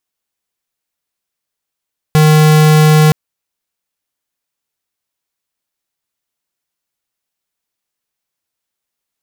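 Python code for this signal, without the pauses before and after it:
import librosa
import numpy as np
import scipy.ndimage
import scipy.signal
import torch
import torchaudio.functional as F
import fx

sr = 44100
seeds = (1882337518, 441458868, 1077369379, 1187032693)

y = fx.tone(sr, length_s=0.97, wave='square', hz=154.0, level_db=-7.0)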